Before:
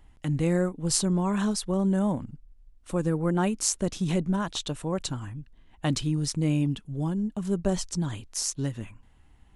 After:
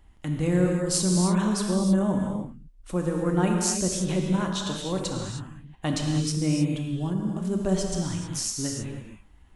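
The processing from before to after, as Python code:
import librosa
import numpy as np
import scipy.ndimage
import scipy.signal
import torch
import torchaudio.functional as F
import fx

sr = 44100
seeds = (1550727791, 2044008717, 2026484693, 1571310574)

y = fx.rev_gated(x, sr, seeds[0], gate_ms=340, shape='flat', drr_db=0.5)
y = F.gain(torch.from_numpy(y), -1.0).numpy()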